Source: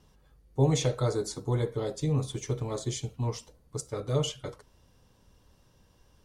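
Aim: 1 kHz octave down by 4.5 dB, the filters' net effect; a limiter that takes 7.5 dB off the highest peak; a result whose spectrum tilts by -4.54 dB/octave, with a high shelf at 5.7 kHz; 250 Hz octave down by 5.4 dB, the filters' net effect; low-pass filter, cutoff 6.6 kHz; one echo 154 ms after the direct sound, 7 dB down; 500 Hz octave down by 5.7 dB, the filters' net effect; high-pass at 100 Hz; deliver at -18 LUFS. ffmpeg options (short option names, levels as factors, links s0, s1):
-af "highpass=100,lowpass=6600,equalizer=f=250:t=o:g=-8,equalizer=f=500:t=o:g=-3.5,equalizer=f=1000:t=o:g=-4.5,highshelf=f=5700:g=8.5,alimiter=level_in=1.06:limit=0.0631:level=0:latency=1,volume=0.944,aecho=1:1:154:0.447,volume=7.5"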